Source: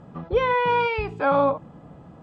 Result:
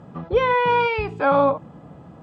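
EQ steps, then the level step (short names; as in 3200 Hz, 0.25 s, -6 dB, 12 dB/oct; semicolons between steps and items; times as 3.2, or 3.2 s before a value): HPF 58 Hz; +2.5 dB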